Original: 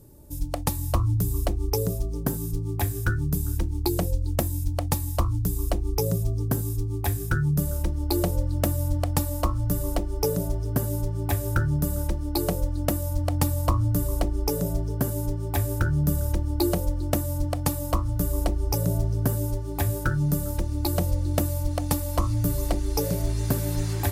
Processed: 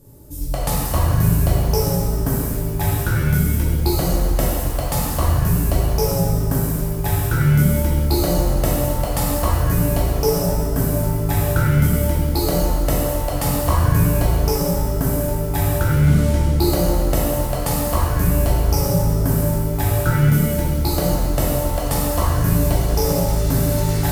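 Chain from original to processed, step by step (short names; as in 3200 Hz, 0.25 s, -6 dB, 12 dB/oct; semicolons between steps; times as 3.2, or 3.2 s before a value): 15.88–16.43 delta modulation 64 kbps, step -41.5 dBFS; shimmer reverb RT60 1.5 s, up +7 st, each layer -8 dB, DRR -6.5 dB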